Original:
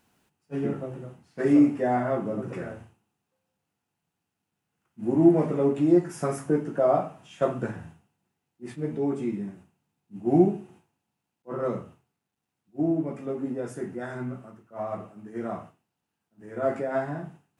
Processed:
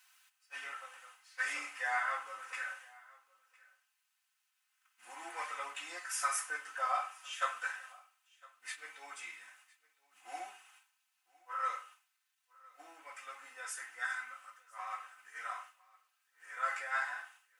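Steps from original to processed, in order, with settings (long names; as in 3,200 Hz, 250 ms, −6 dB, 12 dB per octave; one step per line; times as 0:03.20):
high-pass filter 1,300 Hz 24 dB per octave
comb filter 3.9 ms, depth 93%
single-tap delay 1,008 ms −24 dB
level +3.5 dB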